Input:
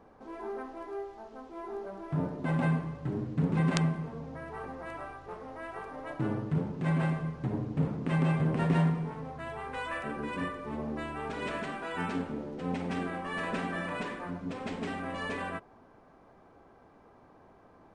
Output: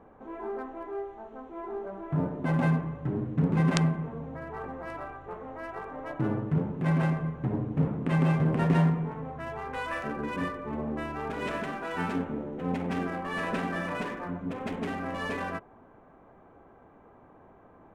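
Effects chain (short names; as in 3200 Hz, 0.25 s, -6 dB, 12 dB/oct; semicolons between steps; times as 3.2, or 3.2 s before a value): Wiener smoothing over 9 samples; gain +3 dB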